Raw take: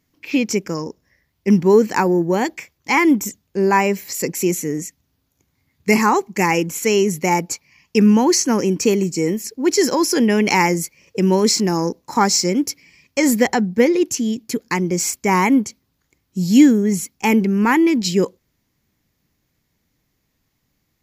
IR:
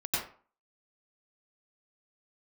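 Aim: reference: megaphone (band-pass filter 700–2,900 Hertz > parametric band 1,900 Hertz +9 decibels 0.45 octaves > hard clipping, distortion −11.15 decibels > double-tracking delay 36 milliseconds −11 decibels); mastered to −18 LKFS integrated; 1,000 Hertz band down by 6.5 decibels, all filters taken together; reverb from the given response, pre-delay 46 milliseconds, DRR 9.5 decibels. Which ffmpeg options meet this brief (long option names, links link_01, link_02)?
-filter_complex "[0:a]equalizer=frequency=1000:width_type=o:gain=-6.5,asplit=2[link_01][link_02];[1:a]atrim=start_sample=2205,adelay=46[link_03];[link_02][link_03]afir=irnorm=-1:irlink=0,volume=-16.5dB[link_04];[link_01][link_04]amix=inputs=2:normalize=0,highpass=700,lowpass=2900,equalizer=frequency=1900:width_type=o:width=0.45:gain=9,asoftclip=type=hard:threshold=-16dB,asplit=2[link_05][link_06];[link_06]adelay=36,volume=-11dB[link_07];[link_05][link_07]amix=inputs=2:normalize=0,volume=6.5dB"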